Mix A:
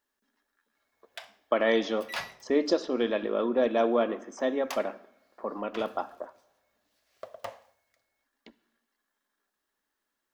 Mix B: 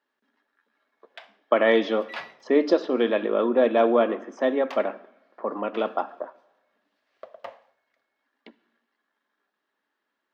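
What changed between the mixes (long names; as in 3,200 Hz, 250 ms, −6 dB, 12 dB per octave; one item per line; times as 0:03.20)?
speech +5.5 dB
master: add three-way crossover with the lows and the highs turned down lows −20 dB, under 160 Hz, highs −21 dB, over 4,100 Hz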